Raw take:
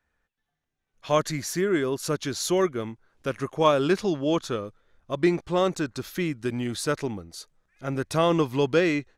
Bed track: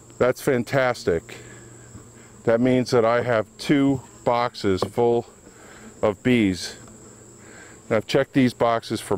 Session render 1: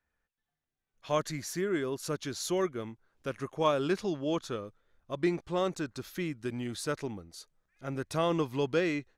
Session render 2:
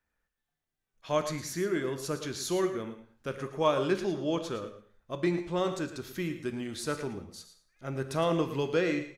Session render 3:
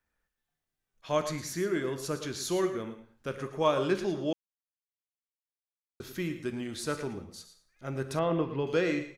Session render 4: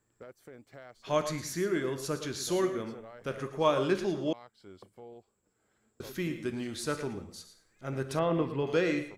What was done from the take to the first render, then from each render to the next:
gain -7 dB
echo 0.112 s -11.5 dB; non-linear reverb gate 0.25 s falling, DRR 8.5 dB
4.33–6 mute; 8.19–8.67 air absorption 340 m
add bed track -29.5 dB

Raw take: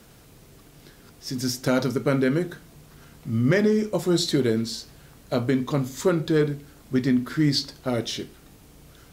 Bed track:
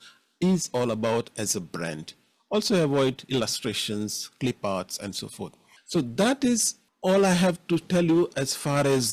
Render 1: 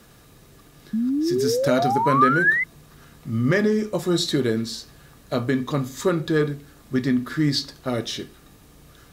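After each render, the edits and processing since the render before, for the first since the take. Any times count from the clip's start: 0.93–2.64 painted sound rise 210–2100 Hz -22 dBFS; small resonant body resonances 1200/1700/3800 Hz, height 9 dB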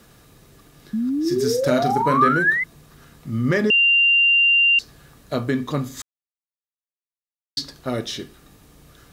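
1.21–2.37 doubler 40 ms -8 dB; 3.7–4.79 bleep 2780 Hz -12.5 dBFS; 6.02–7.57 mute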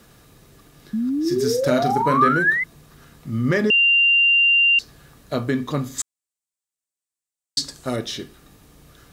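5.98–7.96 bell 7900 Hz +13.5 dB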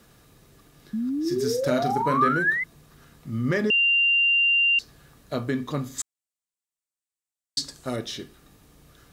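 gain -4.5 dB

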